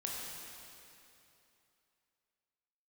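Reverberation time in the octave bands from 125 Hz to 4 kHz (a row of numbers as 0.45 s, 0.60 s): 2.9 s, 2.8 s, 2.9 s, 2.8 s, 2.7 s, 2.6 s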